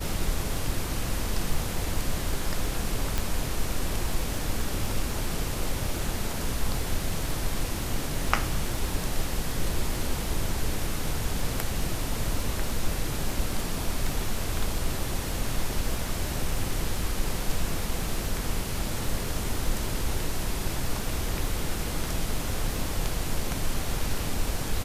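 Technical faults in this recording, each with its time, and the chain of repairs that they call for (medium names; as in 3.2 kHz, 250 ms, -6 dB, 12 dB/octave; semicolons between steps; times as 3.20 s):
crackle 28 per s -34 dBFS
3.18 s: pop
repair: de-click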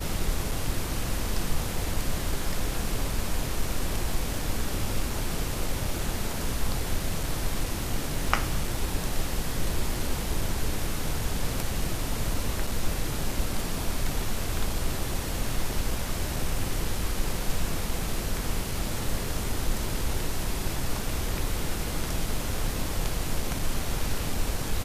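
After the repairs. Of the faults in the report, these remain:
nothing left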